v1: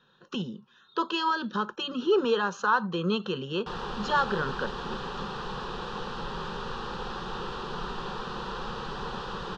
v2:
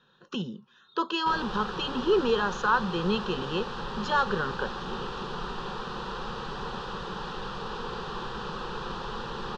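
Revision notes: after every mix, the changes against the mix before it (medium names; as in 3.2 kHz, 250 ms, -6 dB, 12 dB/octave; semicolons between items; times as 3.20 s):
background: entry -2.40 s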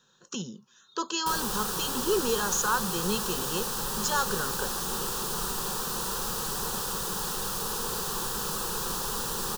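speech -3.5 dB; master: remove low-pass 3.5 kHz 24 dB/octave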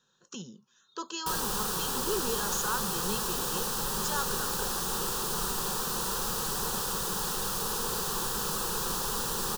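speech -6.5 dB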